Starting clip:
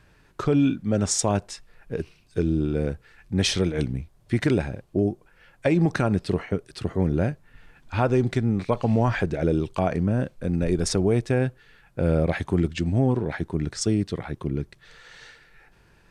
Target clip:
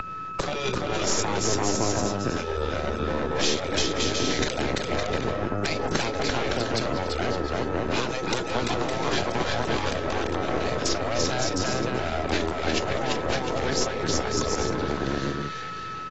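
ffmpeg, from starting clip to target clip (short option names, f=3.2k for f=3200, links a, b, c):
-filter_complex "[0:a]lowshelf=f=330:g=7.5,asplit=2[a][b];[b]aecho=0:1:340|561|704.6|798|858.7:0.631|0.398|0.251|0.158|0.1[c];[a][c]amix=inputs=2:normalize=0,aeval=exprs='val(0)+0.0398*sin(2*PI*1300*n/s)':c=same,highpass=140,lowpass=7.5k,afftfilt=real='re*lt(hypot(re,im),0.251)':imag='im*lt(hypot(re,im),0.251)':win_size=1024:overlap=0.75,aeval=exprs='0.282*(cos(1*acos(clip(val(0)/0.282,-1,1)))-cos(1*PI/2))+0.0562*(cos(8*acos(clip(val(0)/0.282,-1,1)))-cos(8*PI/2))':c=same,asplit=2[d][e];[e]asoftclip=type=tanh:threshold=-26dB,volume=-8.5dB[f];[d][f]amix=inputs=2:normalize=0,acrossover=split=230|610|3900[g][h][i][j];[g]acompressor=threshold=-39dB:ratio=4[k];[h]acompressor=threshold=-37dB:ratio=4[l];[i]acompressor=threshold=-42dB:ratio=4[m];[j]acompressor=threshold=-36dB:ratio=4[n];[k][l][m][n]amix=inputs=4:normalize=0,volume=8dB" -ar 22050 -c:a aac -b:a 24k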